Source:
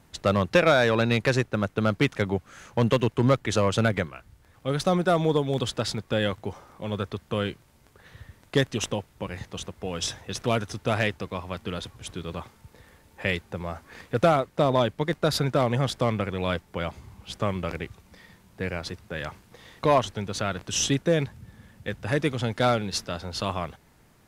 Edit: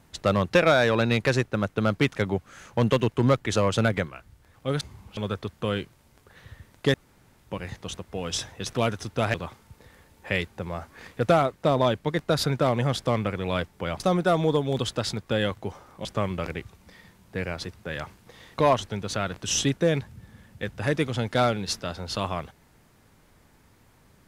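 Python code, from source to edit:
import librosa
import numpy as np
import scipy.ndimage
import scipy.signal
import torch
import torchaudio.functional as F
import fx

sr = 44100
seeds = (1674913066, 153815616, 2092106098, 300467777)

y = fx.edit(x, sr, fx.swap(start_s=4.81, length_s=2.05, other_s=16.94, other_length_s=0.36),
    fx.room_tone_fill(start_s=8.63, length_s=0.45),
    fx.cut(start_s=11.03, length_s=1.25), tone=tone)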